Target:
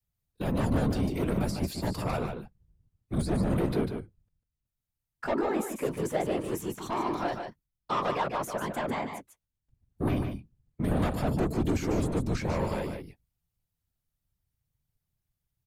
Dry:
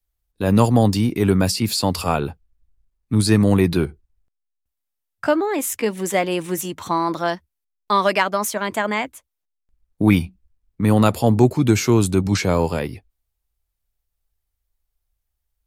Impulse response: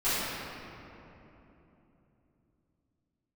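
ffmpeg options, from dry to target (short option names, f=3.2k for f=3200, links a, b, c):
-filter_complex "[0:a]acrossover=split=1500[a][b];[b]acompressor=threshold=-36dB:ratio=6[c];[a][c]amix=inputs=2:normalize=0,asoftclip=type=tanh:threshold=-17.5dB,afftfilt=real='hypot(re,im)*cos(2*PI*random(0))':imag='hypot(re,im)*sin(2*PI*random(1))':win_size=512:overlap=0.75,aecho=1:1:148:0.473"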